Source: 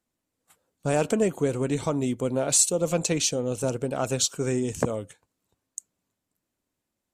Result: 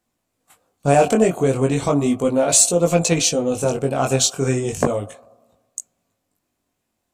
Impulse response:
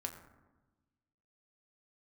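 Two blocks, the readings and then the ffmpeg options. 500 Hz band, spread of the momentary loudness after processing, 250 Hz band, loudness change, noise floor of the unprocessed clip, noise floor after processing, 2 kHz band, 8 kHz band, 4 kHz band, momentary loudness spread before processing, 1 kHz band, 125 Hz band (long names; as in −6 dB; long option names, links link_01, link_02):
+8.0 dB, 14 LU, +7.5 dB, +7.5 dB, −84 dBFS, −76 dBFS, +8.0 dB, +6.5 dB, +6.5 dB, 14 LU, +11.0 dB, +7.5 dB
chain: -filter_complex "[0:a]acontrast=35,flanger=delay=17.5:depth=5.2:speed=0.35,asplit=2[link_01][link_02];[link_02]asplit=3[link_03][link_04][link_05];[link_03]bandpass=frequency=730:width_type=q:width=8,volume=0dB[link_06];[link_04]bandpass=frequency=1090:width_type=q:width=8,volume=-6dB[link_07];[link_05]bandpass=frequency=2440:width_type=q:width=8,volume=-9dB[link_08];[link_06][link_07][link_08]amix=inputs=3:normalize=0[link_09];[1:a]atrim=start_sample=2205,asetrate=38808,aresample=44100[link_10];[link_09][link_10]afir=irnorm=-1:irlink=0,volume=1dB[link_11];[link_01][link_11]amix=inputs=2:normalize=0,volume=4.5dB"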